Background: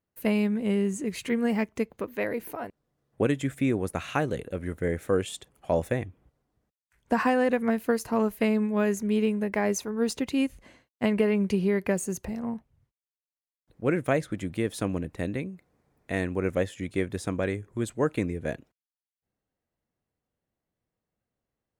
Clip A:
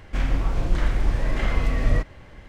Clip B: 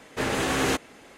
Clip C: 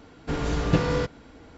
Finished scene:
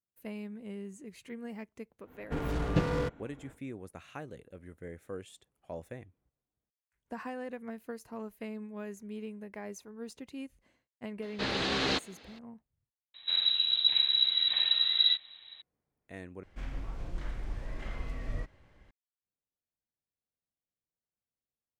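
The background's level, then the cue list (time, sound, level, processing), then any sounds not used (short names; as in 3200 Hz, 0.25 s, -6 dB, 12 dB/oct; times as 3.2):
background -16.5 dB
2.03 add C -6 dB, fades 0.10 s + Wiener smoothing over 9 samples
11.22 add B -7.5 dB + synth low-pass 4200 Hz, resonance Q 4.2
13.14 replace with A -9.5 dB + inverted band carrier 3900 Hz
16.43 replace with A -16 dB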